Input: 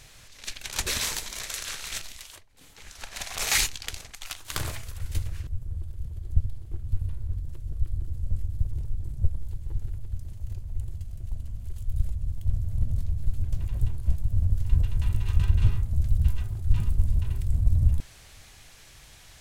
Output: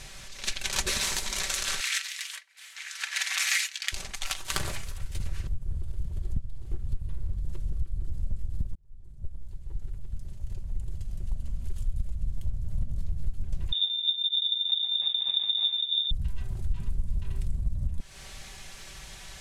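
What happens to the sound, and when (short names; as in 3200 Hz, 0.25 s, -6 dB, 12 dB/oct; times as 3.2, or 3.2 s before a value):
1.8–3.92 resonant high-pass 1800 Hz, resonance Q 2
4.47–5.2 fade out, to -10 dB
8.75–12.11 fade in
13.72–16.11 inverted band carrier 3600 Hz
whole clip: compressor 6:1, threshold -31 dBFS; LPF 11000 Hz 12 dB/oct; comb 5.2 ms, depth 50%; gain +5.5 dB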